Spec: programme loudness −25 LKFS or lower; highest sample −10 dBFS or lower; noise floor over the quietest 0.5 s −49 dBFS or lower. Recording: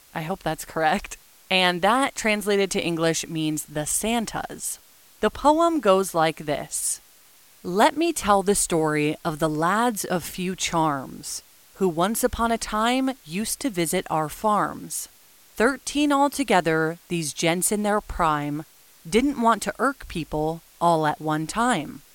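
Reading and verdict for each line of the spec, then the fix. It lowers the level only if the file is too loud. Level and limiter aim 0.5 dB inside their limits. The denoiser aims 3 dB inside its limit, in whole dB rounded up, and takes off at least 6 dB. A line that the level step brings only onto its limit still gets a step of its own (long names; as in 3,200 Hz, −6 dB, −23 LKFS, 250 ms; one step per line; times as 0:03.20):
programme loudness −23.5 LKFS: out of spec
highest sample −5.0 dBFS: out of spec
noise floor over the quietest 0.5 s −53 dBFS: in spec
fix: level −2 dB
brickwall limiter −10.5 dBFS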